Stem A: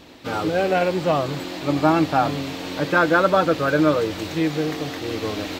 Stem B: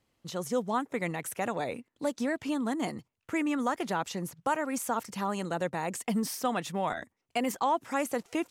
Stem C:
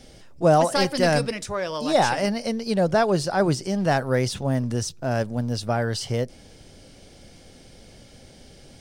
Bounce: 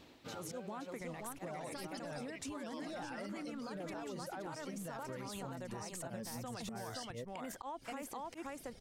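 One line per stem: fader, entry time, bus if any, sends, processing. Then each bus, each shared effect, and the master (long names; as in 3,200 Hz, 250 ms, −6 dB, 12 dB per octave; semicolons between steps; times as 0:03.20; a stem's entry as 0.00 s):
−12.0 dB, 0.00 s, no bus, no send, no echo send, automatic ducking −12 dB, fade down 0.45 s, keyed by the second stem
+0.5 dB, 0.00 s, bus A, no send, echo send −8.5 dB, no processing
−0.5 dB, 1.00 s, bus A, no send, no echo send, reverb reduction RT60 1.7 s; downward compressor, threshold −24 dBFS, peak gain reduction 10.5 dB
bus A: 0.0 dB, volume swells 171 ms; brickwall limiter −26 dBFS, peak gain reduction 14 dB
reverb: not used
echo: single-tap delay 524 ms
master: downward compressor 6 to 1, threshold −42 dBFS, peak gain reduction 13 dB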